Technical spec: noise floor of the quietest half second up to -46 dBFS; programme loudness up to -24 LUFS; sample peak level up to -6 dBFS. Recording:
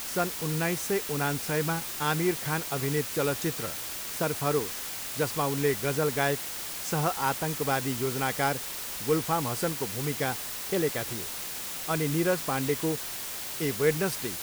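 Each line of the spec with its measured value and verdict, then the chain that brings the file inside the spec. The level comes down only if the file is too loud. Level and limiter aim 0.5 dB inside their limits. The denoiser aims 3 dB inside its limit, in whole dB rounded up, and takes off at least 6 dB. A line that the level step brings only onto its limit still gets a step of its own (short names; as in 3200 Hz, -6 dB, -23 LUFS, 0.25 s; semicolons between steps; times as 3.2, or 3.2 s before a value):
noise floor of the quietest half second -36 dBFS: fail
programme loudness -29.0 LUFS: OK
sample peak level -11.0 dBFS: OK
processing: denoiser 13 dB, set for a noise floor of -36 dBFS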